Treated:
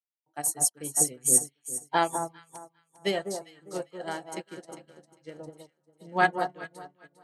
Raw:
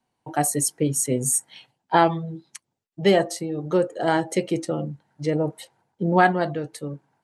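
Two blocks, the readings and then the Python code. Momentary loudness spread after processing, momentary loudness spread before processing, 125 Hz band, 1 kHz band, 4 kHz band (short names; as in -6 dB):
23 LU, 12 LU, -16.5 dB, -6.5 dB, -5.0 dB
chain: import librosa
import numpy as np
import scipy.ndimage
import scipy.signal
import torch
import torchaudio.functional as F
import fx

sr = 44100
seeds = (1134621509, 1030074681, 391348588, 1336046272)

p1 = fx.tilt_eq(x, sr, slope=2.0)
p2 = p1 + fx.echo_alternate(p1, sr, ms=201, hz=1200.0, feedback_pct=72, wet_db=-2.5, dry=0)
p3 = fx.upward_expand(p2, sr, threshold_db=-36.0, expansion=2.5)
y = p3 * 10.0 ** (-3.0 / 20.0)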